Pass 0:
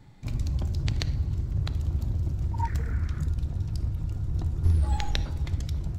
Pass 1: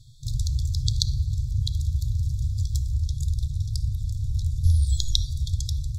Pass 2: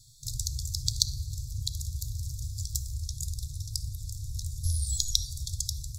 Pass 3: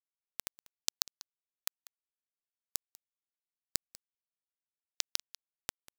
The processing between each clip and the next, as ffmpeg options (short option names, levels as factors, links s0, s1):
-af "afftfilt=real='re*(1-between(b*sr/4096,150,3300))':imag='im*(1-between(b*sr/4096,150,3300))':win_size=4096:overlap=0.75,equalizer=f=6800:w=0.38:g=9,volume=1.41"
-af "aexciter=amount=6:drive=5.7:freq=4200,volume=0.316"
-af "acompressor=threshold=0.0158:ratio=12,acrusher=bits=3:mix=0:aa=0.000001,aecho=1:1:193:0.1,volume=2.51"